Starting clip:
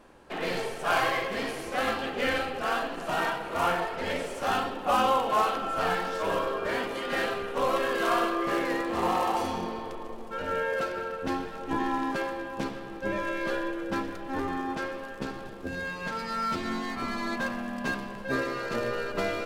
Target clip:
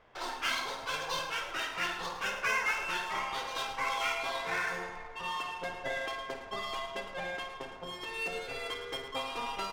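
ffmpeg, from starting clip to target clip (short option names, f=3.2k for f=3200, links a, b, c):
-af "adynamicsmooth=sensitivity=5:basefreq=1.6k,aecho=1:1:102|215.7:0.282|0.282,asetrate=88200,aresample=44100,volume=-6.5dB"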